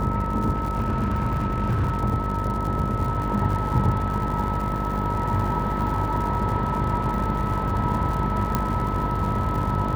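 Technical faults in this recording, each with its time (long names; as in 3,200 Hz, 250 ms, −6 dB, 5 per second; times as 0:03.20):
mains buzz 50 Hz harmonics 14 −28 dBFS
surface crackle 120 per second −30 dBFS
whistle 1,300 Hz −29 dBFS
0:00.51–0:01.99: clipping −19 dBFS
0:08.55: click −8 dBFS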